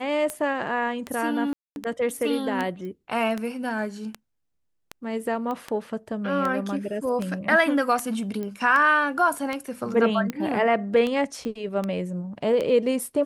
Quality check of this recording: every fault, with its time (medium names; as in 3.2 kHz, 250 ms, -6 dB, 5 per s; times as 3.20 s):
tick 78 rpm -15 dBFS
1.53–1.76 s: dropout 231 ms
2.85 s: pop -28 dBFS
5.51 s: pop -20 dBFS
8.43 s: pop -21 dBFS
11.45 s: pop -21 dBFS